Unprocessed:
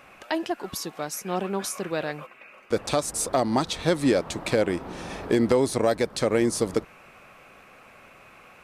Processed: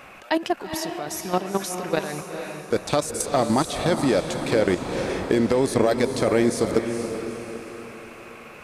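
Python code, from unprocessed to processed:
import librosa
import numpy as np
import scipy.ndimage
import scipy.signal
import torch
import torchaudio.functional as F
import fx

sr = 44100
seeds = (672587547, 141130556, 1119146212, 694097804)

y = fx.level_steps(x, sr, step_db=13)
y = fx.echo_diffused(y, sr, ms=455, feedback_pct=45, wet_db=-7.0)
y = y * 10.0 ** (7.0 / 20.0)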